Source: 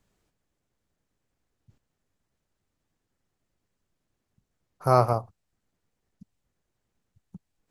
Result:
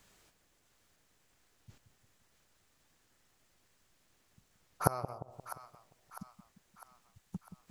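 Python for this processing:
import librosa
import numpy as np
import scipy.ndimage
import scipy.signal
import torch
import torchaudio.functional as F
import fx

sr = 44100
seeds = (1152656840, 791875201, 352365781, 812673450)

y = fx.tilt_shelf(x, sr, db=-5.5, hz=690.0)
y = fx.gate_flip(y, sr, shuts_db=-22.0, range_db=-29)
y = fx.echo_split(y, sr, split_hz=840.0, low_ms=175, high_ms=652, feedback_pct=52, wet_db=-11.0)
y = y * librosa.db_to_amplitude(7.5)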